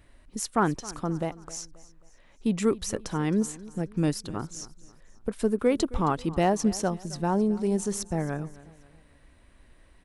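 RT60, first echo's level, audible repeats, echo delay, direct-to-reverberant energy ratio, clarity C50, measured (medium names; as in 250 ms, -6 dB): no reverb, -19.0 dB, 3, 267 ms, no reverb, no reverb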